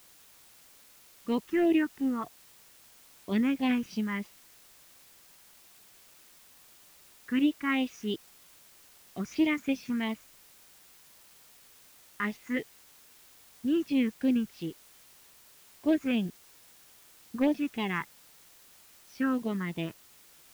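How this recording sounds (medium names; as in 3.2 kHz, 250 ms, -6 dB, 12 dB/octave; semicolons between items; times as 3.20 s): phasing stages 4, 3.1 Hz, lowest notch 670–1400 Hz; a quantiser's noise floor 10-bit, dither triangular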